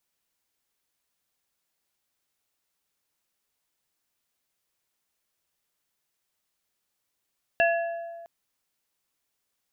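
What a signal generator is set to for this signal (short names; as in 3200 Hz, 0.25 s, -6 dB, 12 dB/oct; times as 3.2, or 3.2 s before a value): glass hit plate, length 0.66 s, lowest mode 676 Hz, modes 3, decay 1.74 s, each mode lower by 2.5 dB, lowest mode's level -19 dB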